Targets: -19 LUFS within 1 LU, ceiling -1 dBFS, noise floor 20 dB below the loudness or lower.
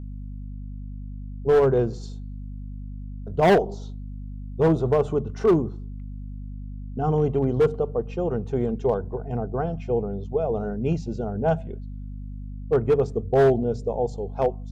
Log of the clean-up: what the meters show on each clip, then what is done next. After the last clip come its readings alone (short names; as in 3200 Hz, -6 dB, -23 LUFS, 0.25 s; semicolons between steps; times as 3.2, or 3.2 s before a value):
clipped 1.1%; flat tops at -13.0 dBFS; hum 50 Hz; harmonics up to 250 Hz; hum level -32 dBFS; loudness -24.0 LUFS; peak -13.0 dBFS; loudness target -19.0 LUFS
-> clip repair -13 dBFS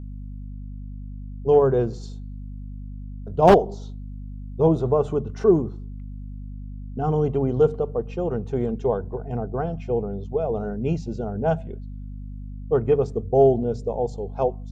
clipped 0.0%; hum 50 Hz; harmonics up to 250 Hz; hum level -32 dBFS
-> de-hum 50 Hz, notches 5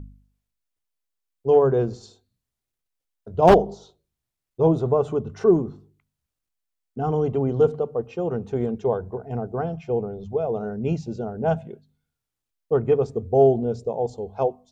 hum none; loudness -23.0 LUFS; peak -3.0 dBFS; loudness target -19.0 LUFS
-> gain +4 dB; limiter -1 dBFS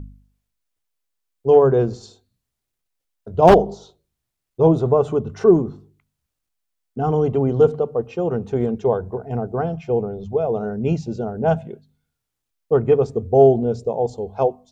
loudness -19.0 LUFS; peak -1.0 dBFS; noise floor -81 dBFS